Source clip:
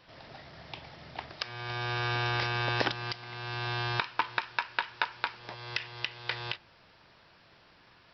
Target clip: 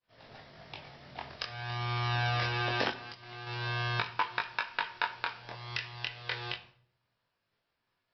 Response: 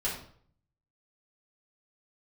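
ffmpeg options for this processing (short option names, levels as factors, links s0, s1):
-filter_complex "[0:a]agate=range=0.0224:threshold=0.00501:ratio=3:detection=peak,asettb=1/sr,asplit=3[s0][s1][s2];[s0]atrim=end=2.884[s3];[s1]atrim=start=2.88:end=3.47,asetpts=PTS-STARTPTS,afade=t=in:d=0.004:c=qsin,afade=t=out:st=0.586:d=0.004:c=qsin,acompressor=threshold=0.0112:ratio=10[s4];[s2]atrim=start=3.466[s5];[s3][s4]acrossfade=d=0.004:c1=hsin:c2=qsin[s6];[s6][s5]acrossfade=d=0.004:c1=qsin:c2=hsin,flanger=delay=18.5:depth=5.6:speed=0.26,asplit=2[s7][s8];[1:a]atrim=start_sample=2205[s9];[s8][s9]afir=irnorm=-1:irlink=0,volume=0.2[s10];[s7][s10]amix=inputs=2:normalize=0"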